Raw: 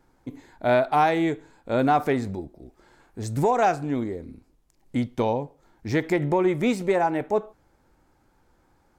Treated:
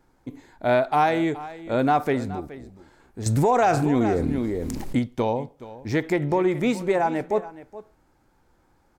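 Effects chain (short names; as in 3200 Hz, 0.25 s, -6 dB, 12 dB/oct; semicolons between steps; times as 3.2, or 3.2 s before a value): echo 0.422 s -16.5 dB; 3.26–4.99 fast leveller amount 70%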